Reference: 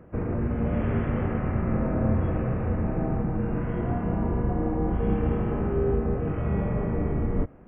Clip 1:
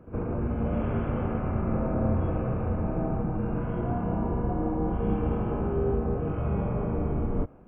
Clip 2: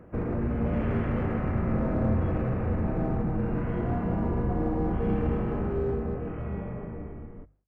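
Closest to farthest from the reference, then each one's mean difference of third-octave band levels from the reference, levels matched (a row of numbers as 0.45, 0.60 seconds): 1, 2; 1.0, 2.5 decibels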